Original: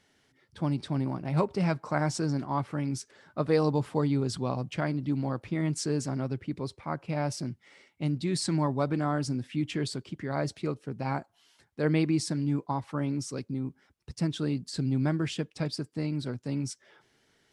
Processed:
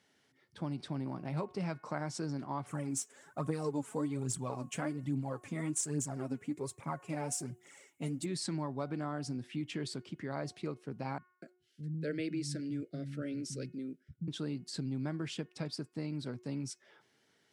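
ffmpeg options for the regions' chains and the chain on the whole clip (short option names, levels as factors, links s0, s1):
-filter_complex "[0:a]asettb=1/sr,asplit=3[s0][s1][s2];[s0]atrim=end=2.664[s3];[s1]atrim=start=2.66:end=8.26,asetpts=PTS-STARTPTS,afade=t=in:d=0.004:c=qsin,afade=t=out:st=5.596:d=0.004:c=qsin,highshelf=f=5800:t=q:w=3:g=8.5,aecho=1:1:7.2:0.37,atrim=end_sample=246960,aphaser=in_gain=1:out_gain=1:delay=4.8:decay=0.62:speed=1.2:type=triangular[s4];[s2]atrim=start=8.256[s5];[s3][s4]acrossfade=d=0.004:c1=hsin:c2=qsin[s6];[s6][s5]acrossfade=d=0.004:c1=qsin:c2=hsin,asettb=1/sr,asplit=3[s7][s8][s9];[s7]atrim=end=11.184[s10];[s8]atrim=start=11.18:end=14.28,asetpts=PTS-STARTPTS,afade=t=in:d=0.004:c=qsin,afade=t=out:st=3.096:d=0.004:c=qsin,agate=range=0.0224:threshold=0.00126:ratio=3:release=100:detection=peak,asuperstop=centerf=930:order=8:qfactor=1.2,acrossover=split=190[s11][s12];[s12]adelay=240[s13];[s11][s13]amix=inputs=2:normalize=0,atrim=end_sample=136710[s14];[s9]atrim=start=14.276[s15];[s10][s14]acrossfade=d=0.004:c1=hsin:c2=qsin[s16];[s16][s15]acrossfade=d=0.004:c1=qsin:c2=hsin,highpass=120,bandreject=f=363:t=h:w=4,bandreject=f=726:t=h:w=4,bandreject=f=1089:t=h:w=4,bandreject=f=1452:t=h:w=4,bandreject=f=1815:t=h:w=4,bandreject=f=2178:t=h:w=4,bandreject=f=2541:t=h:w=4,bandreject=f=2904:t=h:w=4,acompressor=threshold=0.0282:ratio=2.5,volume=0.631"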